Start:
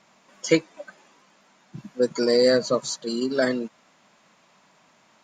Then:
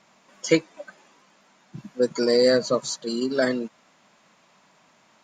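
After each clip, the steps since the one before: nothing audible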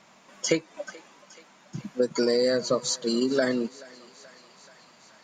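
compressor 6:1, threshold -23 dBFS, peak gain reduction 10.5 dB; thinning echo 0.43 s, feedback 75%, high-pass 580 Hz, level -20 dB; gain +3 dB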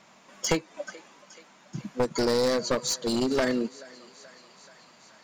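one-sided fold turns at -21 dBFS

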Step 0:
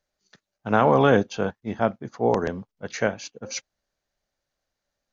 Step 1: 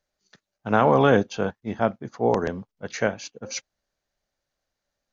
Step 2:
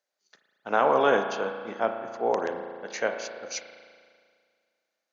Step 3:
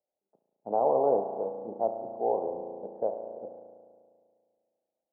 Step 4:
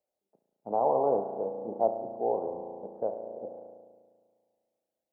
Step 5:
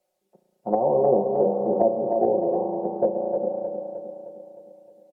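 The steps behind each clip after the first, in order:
nothing audible
HPF 400 Hz 12 dB/oct; spring tank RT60 2 s, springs 35 ms, chirp 25 ms, DRR 6 dB; gain -2.5 dB
steep low-pass 840 Hz 48 dB/oct; dynamic EQ 220 Hz, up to -7 dB, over -40 dBFS, Q 0.97
phaser 0.55 Hz, delay 1.1 ms, feedback 26%
comb 5.5 ms, depth 83%; treble ducked by the level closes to 430 Hz, closed at -25 dBFS; feedback echo 0.309 s, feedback 53%, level -6.5 dB; gain +9 dB

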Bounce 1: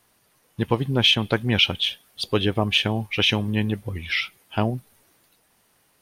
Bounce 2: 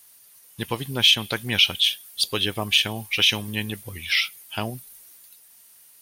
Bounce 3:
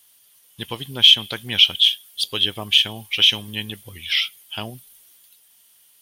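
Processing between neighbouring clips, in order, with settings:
pre-emphasis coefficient 0.9; in parallel at +2.5 dB: limiter -23 dBFS, peak gain reduction 10 dB; on the sum: gain +5 dB
bell 3200 Hz +10.5 dB 0.33 oct; gain -3.5 dB

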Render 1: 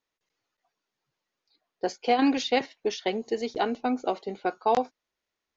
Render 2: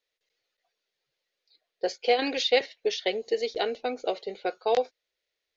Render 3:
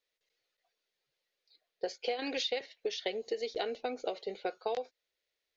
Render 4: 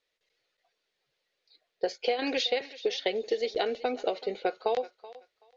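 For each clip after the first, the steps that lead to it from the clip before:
graphic EQ 125/250/500/1000/2000/4000 Hz -4/-9/+11/-8/+6/+9 dB; gain -4 dB
compressor 10:1, threshold -28 dBFS, peak gain reduction 12 dB; gain -2.5 dB
air absorption 63 m; thinning echo 0.379 s, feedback 21%, high-pass 470 Hz, level -16.5 dB; gain +6.5 dB

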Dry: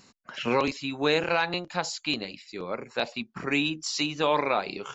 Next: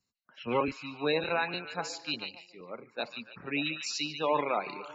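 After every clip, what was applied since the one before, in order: spectral gate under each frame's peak -20 dB strong; on a send: delay with a stepping band-pass 0.146 s, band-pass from 2900 Hz, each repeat -0.7 oct, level -4 dB; on the sum: three-band expander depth 70%; gain -5.5 dB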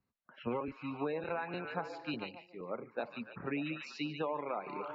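LPF 1600 Hz 12 dB/oct; compressor 16:1, threshold -36 dBFS, peak gain reduction 14.5 dB; gain +3.5 dB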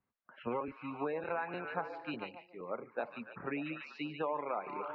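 LPF 2200 Hz 12 dB/oct; low shelf 380 Hz -8 dB; gain +3 dB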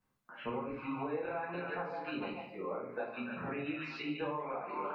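compressor, threshold -43 dBFS, peak gain reduction 12 dB; shoebox room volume 57 m³, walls mixed, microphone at 1.5 m

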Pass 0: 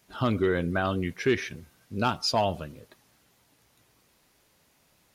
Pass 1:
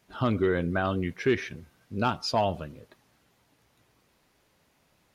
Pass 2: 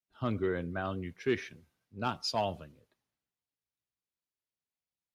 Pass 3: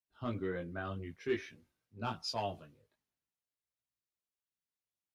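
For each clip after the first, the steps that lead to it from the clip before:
high shelf 4500 Hz -8 dB
three-band expander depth 70%; gain -8.5 dB
chorus voices 2, 0.48 Hz, delay 19 ms, depth 2 ms; gain -2 dB

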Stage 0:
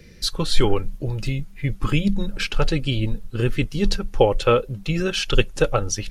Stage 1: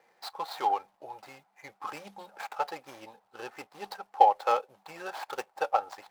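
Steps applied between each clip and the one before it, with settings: median filter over 15 samples; resonant high-pass 800 Hz, resonance Q 6.9; notch 6800 Hz, Q 29; gain -9 dB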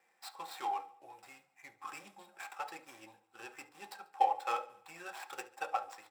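feedback echo 71 ms, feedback 54%, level -20 dB; reverb RT60 0.35 s, pre-delay 3 ms, DRR 8.5 dB; gain -4 dB

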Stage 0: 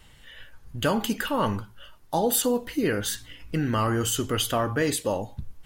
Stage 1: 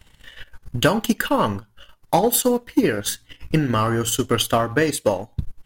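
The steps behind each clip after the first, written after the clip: transient shaper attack +8 dB, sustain -8 dB; sample leveller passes 1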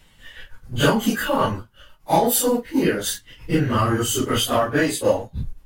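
phase scrambler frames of 0.1 s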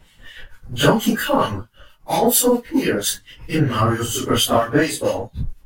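harmonic tremolo 4.4 Hz, depth 70%, crossover 1500 Hz; gain +5 dB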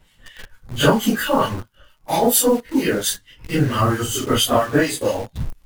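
in parallel at -4 dB: bit-crush 5-bit; on the sum: crackle 78/s -45 dBFS; gain -4.5 dB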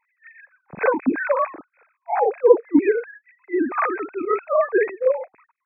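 sine-wave speech; brick-wall FIR low-pass 2600 Hz; gain -1.5 dB

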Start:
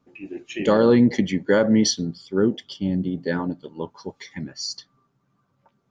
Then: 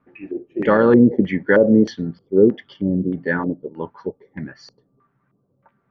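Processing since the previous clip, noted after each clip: LFO low-pass square 1.6 Hz 470–1800 Hz; gain +1.5 dB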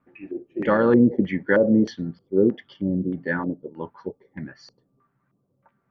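notch 430 Hz, Q 14; gain -4 dB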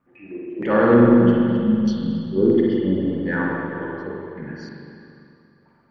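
transient shaper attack -6 dB, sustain +1 dB; spectral repair 1.21–2.16, 260–2600 Hz; spring tank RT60 2.6 s, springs 42/57 ms, chirp 20 ms, DRR -4.5 dB

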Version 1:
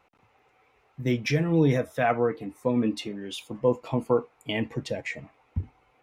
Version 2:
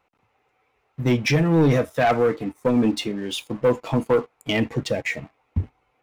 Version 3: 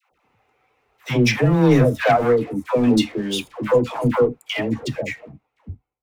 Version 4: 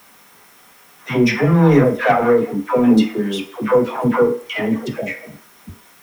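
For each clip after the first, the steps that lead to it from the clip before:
sample leveller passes 2
ending faded out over 1.99 s; dispersion lows, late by 0.124 s, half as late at 650 Hz; gain +3 dB
in parallel at -6.5 dB: requantised 6-bit, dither triangular; on the sum: reverb RT60 0.50 s, pre-delay 3 ms, DRR 4 dB; gain -7.5 dB

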